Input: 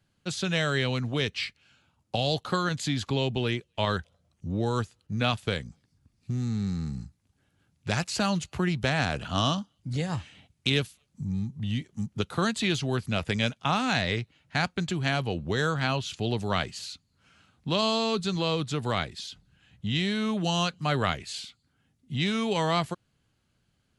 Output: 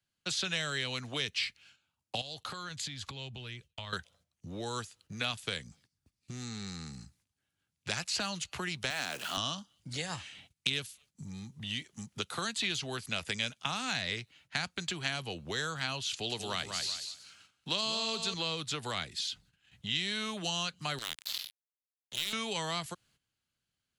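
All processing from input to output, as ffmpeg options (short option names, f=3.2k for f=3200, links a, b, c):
-filter_complex "[0:a]asettb=1/sr,asplit=3[a][b][c];[a]atrim=end=2.214[d];[b]atrim=start=2.21:end=3.93,asetpts=PTS-STARTPTS,afade=t=in:d=0.004:c=qsin,afade=t=out:st=1.716:d=0.004:c=qsin,asubboost=boost=10.5:cutoff=140,acompressor=threshold=-36dB:ratio=8:attack=3.2:release=140:knee=1:detection=peak,agate=range=-33dB:threshold=-55dB:ratio=3:release=100:detection=peak[e];[c]atrim=start=3.926[f];[d][e]acrossfade=d=0.004:c1=hsin:c2=qsin[g];[g][f]acrossfade=d=0.004:c1=qsin:c2=hsin,asettb=1/sr,asplit=3[h][i][j];[h]atrim=end=8.904[k];[i]atrim=start=8.9:end=9.37,asetpts=PTS-STARTPTS,afade=t=in:d=0.004:c=qsin,afade=t=out:st=0.466:d=0.004:c=qsin,aeval=exprs='val(0)+0.5*0.0126*sgn(val(0))':c=same,highpass=350[l];[j]atrim=start=9.366[m];[k][l]acrossfade=d=0.004:c1=hsin:c2=qsin[n];[n][m]acrossfade=d=0.004:c1=qsin:c2=hsin,asettb=1/sr,asplit=3[o][p][q];[o]atrim=end=16.114[r];[p]atrim=start=16.11:end=18.34,asetpts=PTS-STARTPTS,afade=t=in:d=0.004:c=qsin,afade=t=out:st=2.226:d=0.004:c=qsin,bass=f=250:g=-4,treble=f=4k:g=4,aecho=1:1:187|374|561:0.355|0.0674|0.0128,atrim=end_sample=98343[s];[q]atrim=start=18.336[t];[r][s]acrossfade=d=0.004:c1=hsin:c2=qsin[u];[u][t]acrossfade=d=0.004:c1=qsin:c2=hsin,asettb=1/sr,asplit=3[v][w][x];[v]atrim=end=20.984[y];[w]atrim=start=20.98:end=22.33,asetpts=PTS-STARTPTS,afade=t=in:d=0.004:c=qsin,afade=t=out:st=1.346:d=0.004:c=qsin,equalizer=f=3.7k:t=o:w=1.1:g=14,acompressor=threshold=-36dB:ratio=3:attack=3.2:release=140:knee=1:detection=peak,acrusher=bits=4:mix=0:aa=0.5[z];[x]atrim=start=22.326[aa];[y][z]acrossfade=d=0.004:c1=hsin:c2=qsin[ab];[ab][aa]acrossfade=d=0.004:c1=qsin:c2=hsin,agate=range=-13dB:threshold=-59dB:ratio=16:detection=peak,acrossover=split=120|340|5300[ac][ad][ae][af];[ac]acompressor=threshold=-47dB:ratio=4[ag];[ad]acompressor=threshold=-41dB:ratio=4[ah];[ae]acompressor=threshold=-35dB:ratio=4[ai];[af]acompressor=threshold=-48dB:ratio=4[aj];[ag][ah][ai][aj]amix=inputs=4:normalize=0,tiltshelf=f=1.2k:g=-6"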